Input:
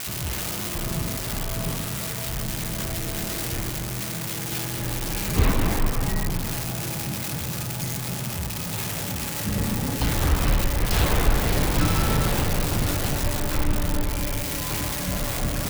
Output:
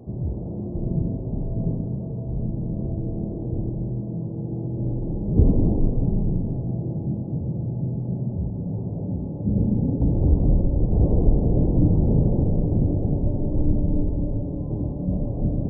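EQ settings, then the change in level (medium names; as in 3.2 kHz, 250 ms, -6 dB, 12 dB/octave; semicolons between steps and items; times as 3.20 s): Gaussian low-pass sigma 18 samples; bass shelf 86 Hz -7 dB; +8.0 dB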